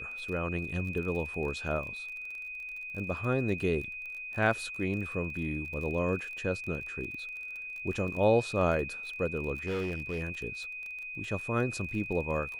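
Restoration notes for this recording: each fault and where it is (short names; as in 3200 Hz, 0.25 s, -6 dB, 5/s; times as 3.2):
crackle 29/s -38 dBFS
tone 2500 Hz -38 dBFS
9.66–10.22 clipped -29 dBFS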